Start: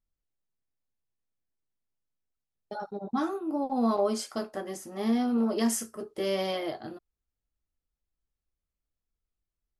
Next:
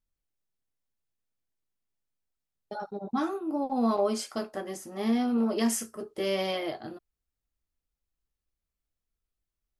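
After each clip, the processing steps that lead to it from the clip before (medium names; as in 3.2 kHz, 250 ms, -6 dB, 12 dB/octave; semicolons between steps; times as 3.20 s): dynamic bell 2.5 kHz, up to +4 dB, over -52 dBFS, Q 2.4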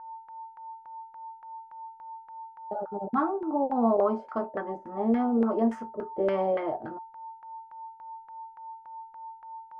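whistle 900 Hz -45 dBFS; LFO low-pass saw down 3.5 Hz 490–1600 Hz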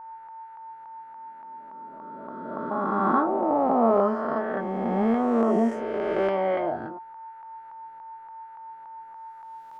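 reverse spectral sustain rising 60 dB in 2.51 s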